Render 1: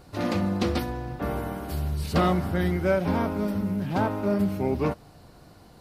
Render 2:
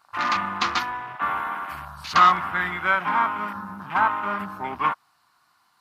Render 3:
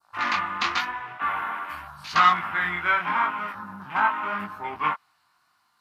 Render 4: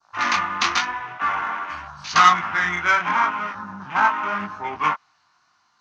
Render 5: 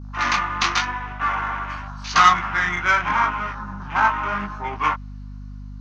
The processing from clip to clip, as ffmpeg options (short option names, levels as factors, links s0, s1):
-af "highpass=f=350:p=1,lowshelf=f=750:t=q:w=3:g=-13,afwtdn=0.00794,volume=2.66"
-af "adynamicequalizer=threshold=0.0158:dfrequency=2300:dqfactor=0.94:tfrequency=2300:tqfactor=0.94:attack=5:release=100:ratio=0.375:range=3:mode=boostabove:tftype=bell,flanger=delay=17.5:depth=6.3:speed=0.86,volume=0.891"
-filter_complex "[0:a]acrossover=split=450|700[s0][s1][s2];[s2]adynamicsmooth=sensitivity=1:basefreq=4700[s3];[s0][s1][s3]amix=inputs=3:normalize=0,lowpass=f=6200:t=q:w=6.1,volume=1.58"
-af "aeval=exprs='val(0)+0.02*(sin(2*PI*50*n/s)+sin(2*PI*2*50*n/s)/2+sin(2*PI*3*50*n/s)/3+sin(2*PI*4*50*n/s)/4+sin(2*PI*5*50*n/s)/5)':c=same"